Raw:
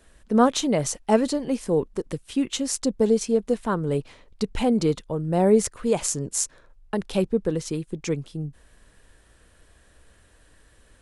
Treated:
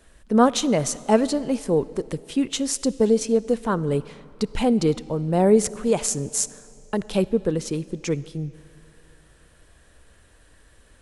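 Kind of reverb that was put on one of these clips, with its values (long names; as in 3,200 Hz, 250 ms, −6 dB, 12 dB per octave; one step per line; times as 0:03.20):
comb and all-pass reverb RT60 2.8 s, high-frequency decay 0.85×, pre-delay 20 ms, DRR 18.5 dB
level +1.5 dB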